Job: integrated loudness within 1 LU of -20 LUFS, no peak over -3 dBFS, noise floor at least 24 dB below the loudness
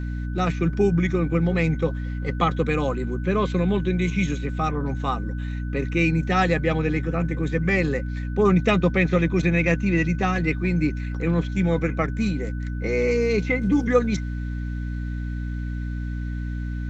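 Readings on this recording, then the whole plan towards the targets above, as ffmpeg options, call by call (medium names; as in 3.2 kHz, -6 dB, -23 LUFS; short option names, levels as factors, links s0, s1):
hum 60 Hz; highest harmonic 300 Hz; hum level -26 dBFS; steady tone 1.5 kHz; tone level -44 dBFS; loudness -23.5 LUFS; peak level -5.5 dBFS; loudness target -20.0 LUFS
-> -af "bandreject=f=60:t=h:w=6,bandreject=f=120:t=h:w=6,bandreject=f=180:t=h:w=6,bandreject=f=240:t=h:w=6,bandreject=f=300:t=h:w=6"
-af "bandreject=f=1500:w=30"
-af "volume=1.5,alimiter=limit=0.708:level=0:latency=1"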